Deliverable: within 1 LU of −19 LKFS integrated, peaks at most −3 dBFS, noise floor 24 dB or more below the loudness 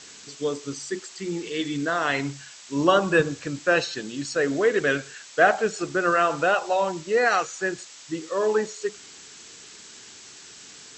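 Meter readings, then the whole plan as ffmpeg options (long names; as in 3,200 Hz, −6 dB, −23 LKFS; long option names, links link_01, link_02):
background noise floor −46 dBFS; target noise floor −49 dBFS; integrated loudness −24.5 LKFS; sample peak −5.5 dBFS; target loudness −19.0 LKFS
→ -af "afftdn=noise_reduction=6:noise_floor=-46"
-af "volume=5.5dB,alimiter=limit=-3dB:level=0:latency=1"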